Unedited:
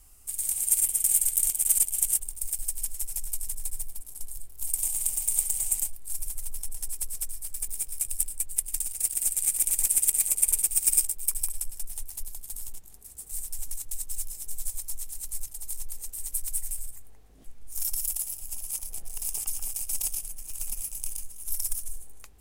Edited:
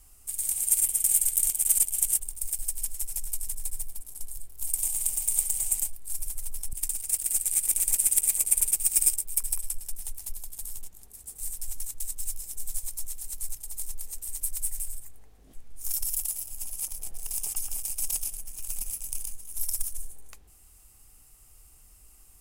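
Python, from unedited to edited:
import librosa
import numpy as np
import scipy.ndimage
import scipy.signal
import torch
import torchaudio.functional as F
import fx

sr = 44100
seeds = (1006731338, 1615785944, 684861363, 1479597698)

y = fx.edit(x, sr, fx.cut(start_s=6.73, length_s=1.91), tone=tone)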